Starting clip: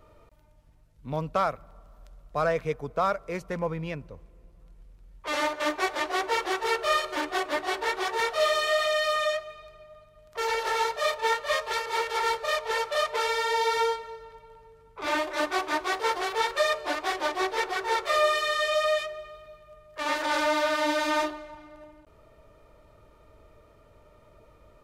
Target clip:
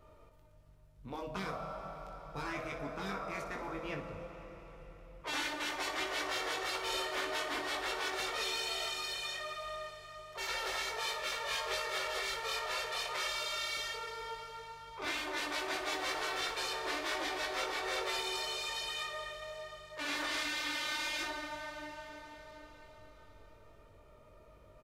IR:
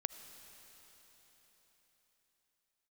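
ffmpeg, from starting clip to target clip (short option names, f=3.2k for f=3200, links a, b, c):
-filter_complex "[1:a]atrim=start_sample=2205[a];[0:a][a]afir=irnorm=-1:irlink=0,afftfilt=real='re*lt(hypot(re,im),0.126)':imag='im*lt(hypot(re,im),0.126)':win_size=1024:overlap=0.75,aecho=1:1:21|61:0.562|0.299,volume=-4dB"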